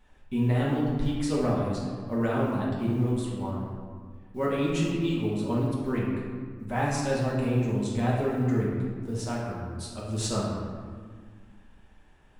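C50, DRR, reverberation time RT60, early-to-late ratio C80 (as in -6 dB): 0.0 dB, -6.5 dB, 1.7 s, 2.0 dB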